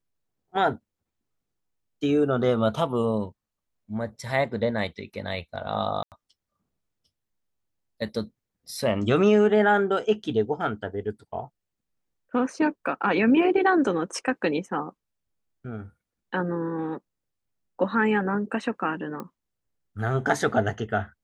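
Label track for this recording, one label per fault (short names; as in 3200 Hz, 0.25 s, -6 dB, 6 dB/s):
6.030000	6.120000	gap 88 ms
19.200000	19.200000	pop -22 dBFS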